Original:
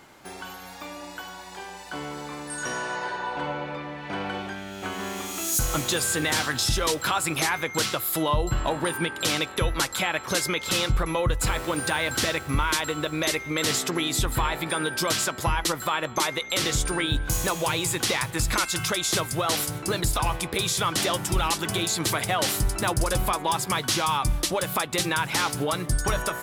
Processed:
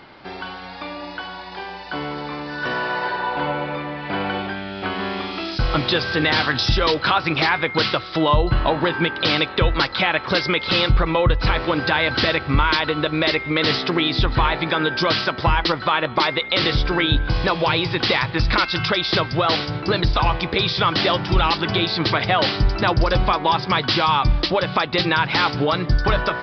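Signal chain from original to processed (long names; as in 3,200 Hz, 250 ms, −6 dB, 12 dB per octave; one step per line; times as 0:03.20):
downsampling to 11,025 Hz
level +7 dB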